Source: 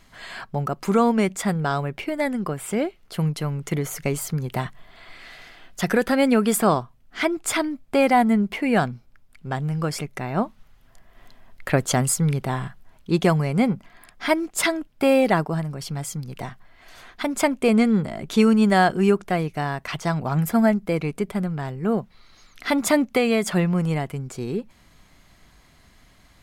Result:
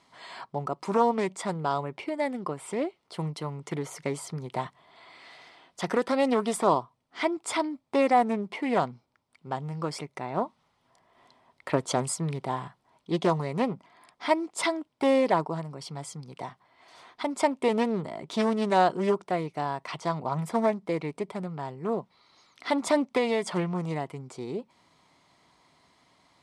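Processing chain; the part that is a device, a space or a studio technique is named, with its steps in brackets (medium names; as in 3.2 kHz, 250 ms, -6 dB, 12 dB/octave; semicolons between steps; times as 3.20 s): full-range speaker at full volume (loudspeaker Doppler distortion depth 0.3 ms; cabinet simulation 180–9000 Hz, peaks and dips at 210 Hz -6 dB, 950 Hz +7 dB, 1.6 kHz -8 dB, 2.7 kHz -4 dB, 6.8 kHz -6 dB); trim -4.5 dB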